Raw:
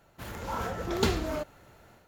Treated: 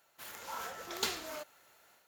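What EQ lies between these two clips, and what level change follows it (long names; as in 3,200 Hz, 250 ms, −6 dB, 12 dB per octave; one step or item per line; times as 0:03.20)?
RIAA equalisation recording
low-shelf EQ 460 Hz −8 dB
high-shelf EQ 7,200 Hz −8.5 dB
−6.0 dB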